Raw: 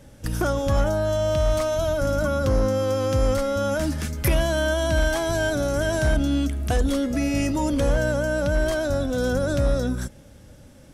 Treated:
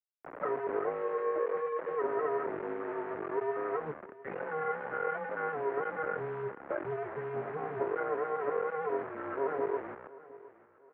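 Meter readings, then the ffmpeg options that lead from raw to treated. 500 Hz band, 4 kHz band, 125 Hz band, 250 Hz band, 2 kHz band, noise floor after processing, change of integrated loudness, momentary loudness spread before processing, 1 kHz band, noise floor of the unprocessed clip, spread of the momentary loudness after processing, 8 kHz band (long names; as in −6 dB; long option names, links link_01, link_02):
−9.5 dB, below −30 dB, −26.5 dB, −19.0 dB, −11.0 dB, −59 dBFS, −11.5 dB, 3 LU, −4.5 dB, −47 dBFS, 8 LU, below −40 dB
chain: -af "afftfilt=real='re*gte(hypot(re,im),0.141)':imag='im*gte(hypot(re,im),0.141)':win_size=1024:overlap=0.75,aecho=1:1:6.9:0.66,flanger=delay=9.8:depth=5:regen=46:speed=1.1:shape=sinusoidal,acrusher=bits=3:dc=4:mix=0:aa=0.000001,aecho=1:1:711|1422|2133:0.112|0.0381|0.013,highpass=frequency=490:width_type=q:width=0.5412,highpass=frequency=490:width_type=q:width=1.307,lowpass=frequency=2000:width_type=q:width=0.5176,lowpass=frequency=2000:width_type=q:width=0.7071,lowpass=frequency=2000:width_type=q:width=1.932,afreqshift=-150"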